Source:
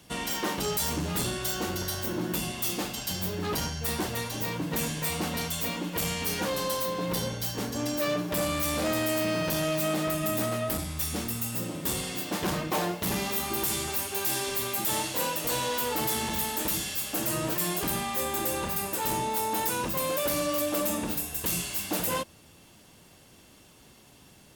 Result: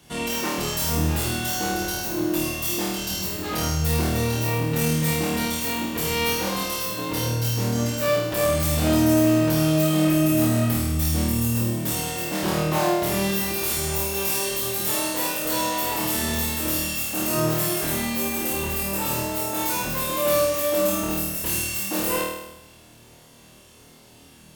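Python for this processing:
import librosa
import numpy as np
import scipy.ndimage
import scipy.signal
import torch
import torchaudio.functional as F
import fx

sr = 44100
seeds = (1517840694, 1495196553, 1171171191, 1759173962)

y = fx.room_flutter(x, sr, wall_m=4.4, rt60_s=0.91)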